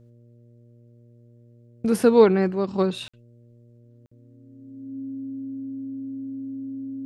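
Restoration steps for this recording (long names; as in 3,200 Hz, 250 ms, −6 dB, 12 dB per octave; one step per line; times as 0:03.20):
hum removal 118.5 Hz, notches 5
notch filter 270 Hz, Q 30
repair the gap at 0:03.08/0:04.06, 55 ms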